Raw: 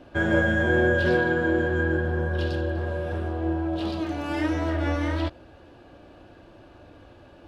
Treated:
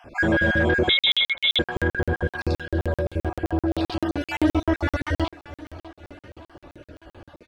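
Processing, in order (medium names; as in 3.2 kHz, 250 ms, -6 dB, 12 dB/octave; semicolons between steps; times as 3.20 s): random holes in the spectrogram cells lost 38%; 4.28–4.80 s: comb 3 ms, depth 97%; in parallel at 0 dB: peak limiter -18.5 dBFS, peak gain reduction 8.5 dB; on the sum: saturation -11.5 dBFS, distortion -20 dB; on a send: feedback delay 588 ms, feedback 53%, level -17 dB; 0.89–1.59 s: on the sum: frequency inversion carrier 3.8 kHz; crackling interface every 0.13 s, samples 2048, zero, from 0.99 s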